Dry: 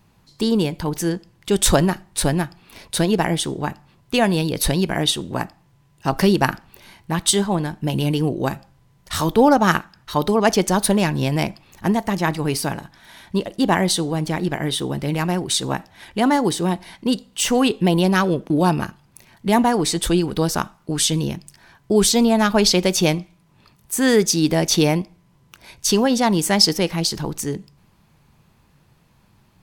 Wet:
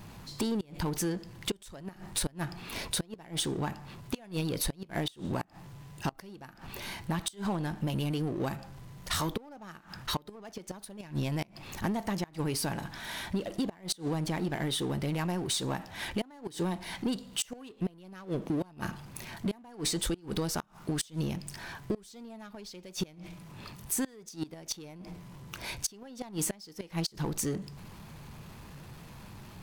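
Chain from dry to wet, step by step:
gate with flip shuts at −8 dBFS, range −38 dB
downward compressor 6 to 1, threshold −31 dBFS, peak gain reduction 16 dB
power curve on the samples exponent 0.7
level −2 dB

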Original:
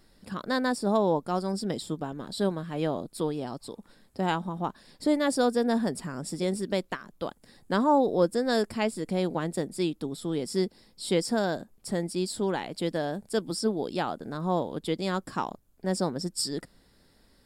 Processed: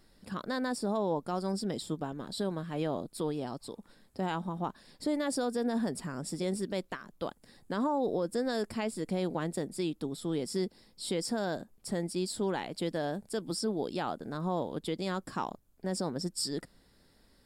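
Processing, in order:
brickwall limiter −19.5 dBFS, peak gain reduction 8.5 dB
level −2.5 dB

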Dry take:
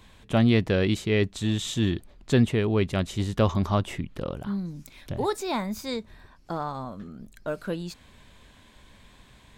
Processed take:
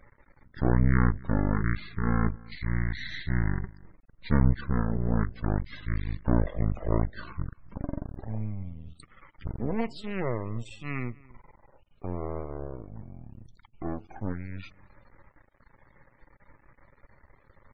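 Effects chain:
half-wave rectification
slap from a distant wall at 25 metres, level −23 dB
change of speed 0.54×
spectral peaks only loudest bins 64

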